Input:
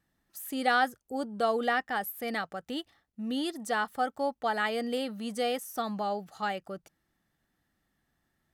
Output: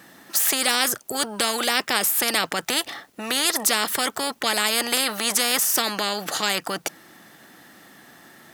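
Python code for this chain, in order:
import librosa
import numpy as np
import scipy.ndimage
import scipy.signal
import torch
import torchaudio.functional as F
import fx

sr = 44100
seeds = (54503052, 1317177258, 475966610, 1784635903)

y = scipy.signal.sosfilt(scipy.signal.butter(2, 250.0, 'highpass', fs=sr, output='sos'), x)
y = fx.spectral_comp(y, sr, ratio=4.0)
y = y * 10.0 ** (8.5 / 20.0)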